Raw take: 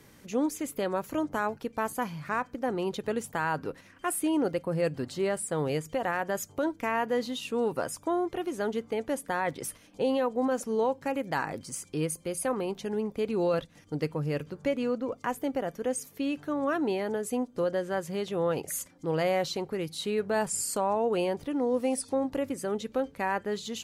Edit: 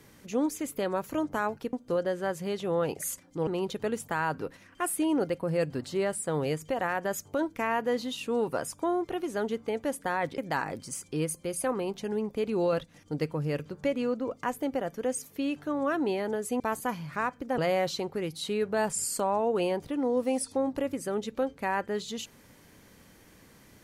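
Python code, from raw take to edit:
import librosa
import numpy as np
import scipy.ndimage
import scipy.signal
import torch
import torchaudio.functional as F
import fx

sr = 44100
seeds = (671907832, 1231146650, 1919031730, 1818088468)

y = fx.edit(x, sr, fx.swap(start_s=1.73, length_s=0.98, other_s=17.41, other_length_s=1.74),
    fx.cut(start_s=9.62, length_s=1.57), tone=tone)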